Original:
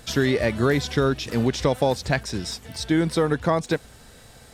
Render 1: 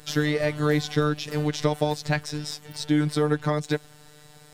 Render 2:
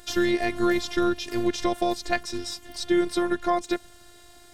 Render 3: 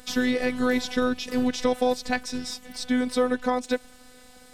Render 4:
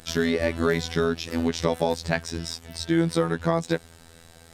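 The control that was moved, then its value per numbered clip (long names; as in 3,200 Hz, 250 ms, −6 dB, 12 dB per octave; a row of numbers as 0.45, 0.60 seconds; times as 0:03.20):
phases set to zero, frequency: 150, 350, 250, 83 Hertz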